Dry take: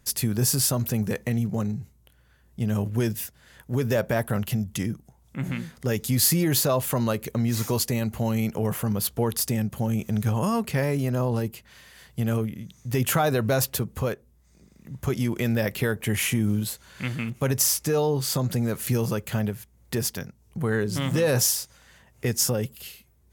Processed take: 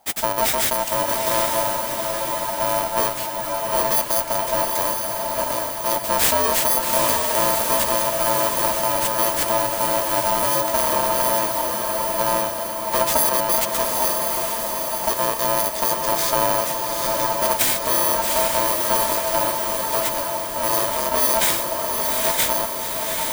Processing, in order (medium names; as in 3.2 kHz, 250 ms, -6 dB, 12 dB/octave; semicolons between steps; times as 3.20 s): bit-reversed sample order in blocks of 64 samples; ring modulator 780 Hz; echo that smears into a reverb 819 ms, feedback 61%, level -3 dB; trim +5.5 dB